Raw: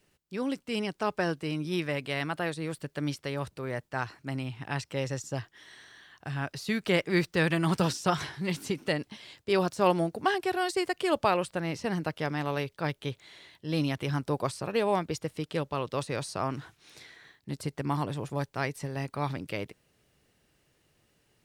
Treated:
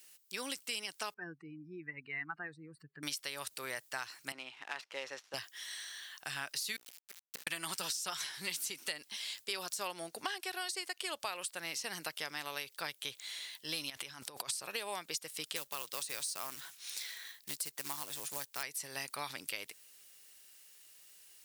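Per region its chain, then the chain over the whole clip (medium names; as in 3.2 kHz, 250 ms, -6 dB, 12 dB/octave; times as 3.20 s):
1.14–3.03 s: spectral contrast enhancement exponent 2.3 + distance through air 210 m + static phaser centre 1.4 kHz, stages 4
4.32–5.34 s: dead-time distortion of 0.057 ms + high-pass 370 Hz + tape spacing loss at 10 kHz 28 dB
6.76–7.47 s: inverted gate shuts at -23 dBFS, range -35 dB + hum notches 60/120/180/240/300/360/420/480/540 Hz + small samples zeroed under -50.5 dBFS
9.86–11.20 s: treble shelf 10 kHz -9.5 dB + band-stop 7.4 kHz, Q 19
13.90–14.51 s: treble shelf 9.4 kHz -8 dB + compressor with a negative ratio -40 dBFS
15.56–18.63 s: high-pass 46 Hz 24 dB/octave + short-mantissa float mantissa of 2-bit
whole clip: differentiator; compression 6:1, threshold -51 dBFS; trim +15 dB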